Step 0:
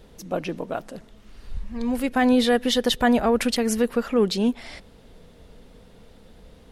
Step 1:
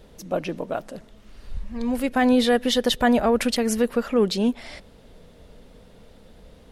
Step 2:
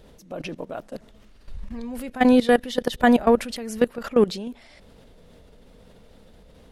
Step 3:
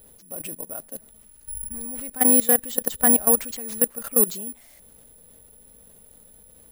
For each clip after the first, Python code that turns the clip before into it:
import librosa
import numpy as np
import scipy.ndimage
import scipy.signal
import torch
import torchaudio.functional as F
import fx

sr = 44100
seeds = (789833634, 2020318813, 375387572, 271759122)

y1 = fx.peak_eq(x, sr, hz=590.0, db=4.5, octaves=0.21)
y2 = fx.level_steps(y1, sr, step_db=18)
y2 = F.gain(torch.from_numpy(y2), 4.0).numpy()
y3 = (np.kron(y2[::4], np.eye(4)[0]) * 4)[:len(y2)]
y3 = F.gain(torch.from_numpy(y3), -7.0).numpy()